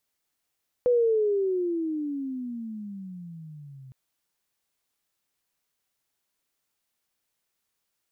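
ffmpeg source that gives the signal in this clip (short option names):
-f lavfi -i "aevalsrc='pow(10,(-17.5-25.5*t/3.06)/20)*sin(2*PI*499*3.06/(-23.5*log(2)/12)*(exp(-23.5*log(2)/12*t/3.06)-1))':d=3.06:s=44100"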